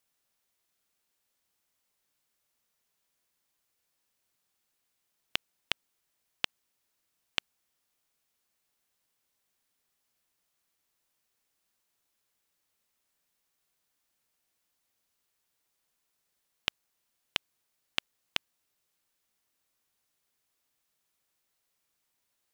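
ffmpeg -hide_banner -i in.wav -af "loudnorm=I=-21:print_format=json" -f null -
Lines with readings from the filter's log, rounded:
"input_i" : "-37.0",
"input_tp" : "-5.6",
"input_lra" : "6.0",
"input_thresh" : "-47.0",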